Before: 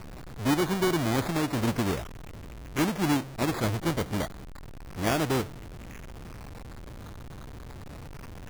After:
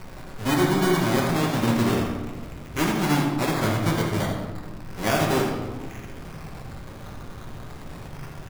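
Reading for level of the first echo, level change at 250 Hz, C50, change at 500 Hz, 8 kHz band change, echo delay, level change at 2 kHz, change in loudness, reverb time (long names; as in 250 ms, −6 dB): −8.5 dB, +4.5 dB, 2.5 dB, +5.0 dB, +4.0 dB, 82 ms, +5.5 dB, +4.5 dB, 1.5 s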